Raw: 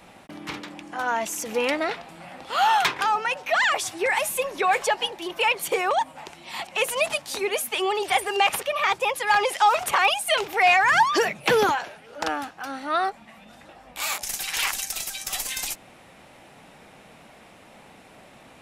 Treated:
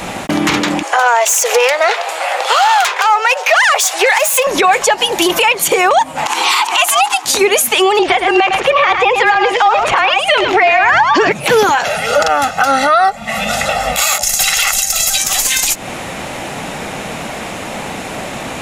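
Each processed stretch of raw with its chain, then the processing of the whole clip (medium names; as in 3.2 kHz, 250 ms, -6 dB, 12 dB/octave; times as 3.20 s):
0.83–4.47 s: self-modulated delay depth 0.079 ms + steep high-pass 450 Hz 48 dB/octave
4.98–5.43 s: treble shelf 8.5 kHz +10.5 dB + compression 2:1, threshold -28 dBFS
6.26–7.25 s: resonant low shelf 520 Hz -6 dB, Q 3 + upward compressor, threshold -30 dBFS + frequency shift +170 Hz
7.99–11.32 s: low-pass 3.5 kHz + delay 106 ms -8.5 dB + frequency shift -30 Hz
11.85–15.18 s: comb 1.5 ms, depth 89% + tape noise reduction on one side only encoder only
whole clip: peaking EQ 6.8 kHz +6.5 dB 0.29 oct; compression 6:1, threshold -33 dBFS; loudness maximiser +26.5 dB; trim -1 dB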